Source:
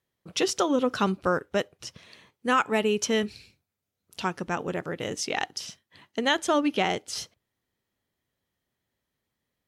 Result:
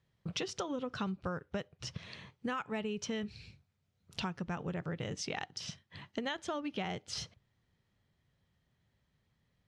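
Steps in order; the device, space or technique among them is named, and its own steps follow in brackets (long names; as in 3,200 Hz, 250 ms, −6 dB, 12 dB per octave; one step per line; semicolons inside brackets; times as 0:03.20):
jukebox (low-pass filter 5,400 Hz 12 dB per octave; low shelf with overshoot 210 Hz +7.5 dB, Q 1.5; downward compressor 5 to 1, threshold −39 dBFS, peak gain reduction 18.5 dB)
level +2.5 dB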